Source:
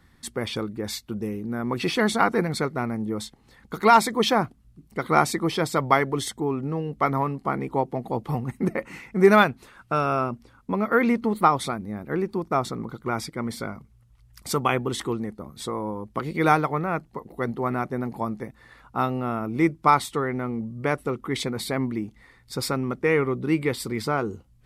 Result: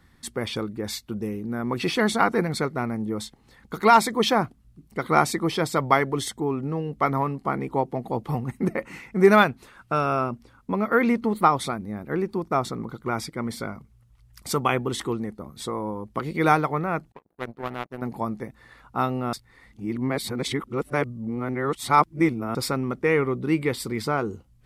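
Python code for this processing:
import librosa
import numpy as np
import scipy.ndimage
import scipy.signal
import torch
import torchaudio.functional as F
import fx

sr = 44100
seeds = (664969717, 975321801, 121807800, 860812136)

y = fx.power_curve(x, sr, exponent=2.0, at=(17.12, 18.02))
y = fx.edit(y, sr, fx.reverse_span(start_s=19.33, length_s=3.22), tone=tone)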